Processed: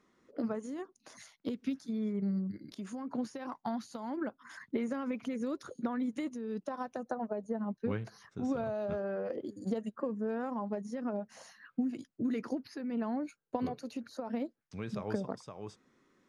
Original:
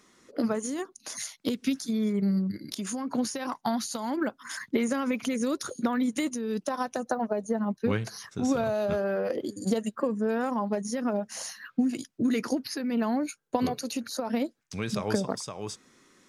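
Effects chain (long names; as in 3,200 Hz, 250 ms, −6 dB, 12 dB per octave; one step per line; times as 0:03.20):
low-pass filter 1,500 Hz 6 dB per octave
level −7 dB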